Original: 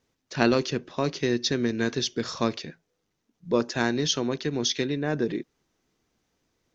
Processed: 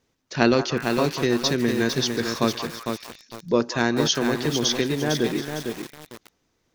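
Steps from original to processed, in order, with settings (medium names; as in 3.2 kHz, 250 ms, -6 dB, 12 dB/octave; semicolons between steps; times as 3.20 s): repeats whose band climbs or falls 182 ms, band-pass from 990 Hz, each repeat 0.7 oct, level -7 dB; bit-crushed delay 453 ms, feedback 35%, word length 6-bit, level -5 dB; trim +3 dB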